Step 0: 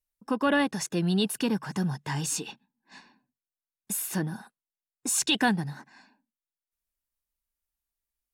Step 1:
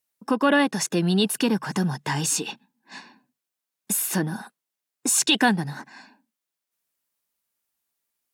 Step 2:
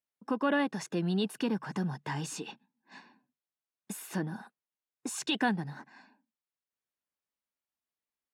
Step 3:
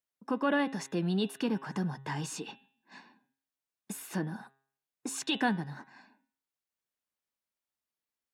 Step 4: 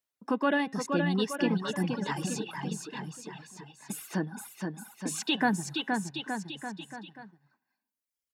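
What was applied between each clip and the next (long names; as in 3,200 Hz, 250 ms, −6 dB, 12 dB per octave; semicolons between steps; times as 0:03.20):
high-pass filter 160 Hz 12 dB per octave; in parallel at −1 dB: downward compressor, threshold −35 dBFS, peak gain reduction 15.5 dB; on the sum: level +3.5 dB
low-pass filter 2,600 Hz 6 dB per octave; level −8.5 dB
hum removal 135.1 Hz, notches 30
bouncing-ball delay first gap 470 ms, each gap 0.85×, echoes 5; reverb reduction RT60 1.5 s; level +3 dB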